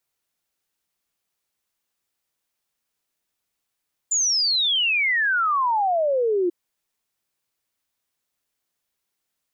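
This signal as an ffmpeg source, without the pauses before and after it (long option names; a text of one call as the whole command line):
ffmpeg -f lavfi -i "aevalsrc='0.126*clip(min(t,2.39-t)/0.01,0,1)*sin(2*PI*7200*2.39/log(340/7200)*(exp(log(340/7200)*t/2.39)-1))':duration=2.39:sample_rate=44100" out.wav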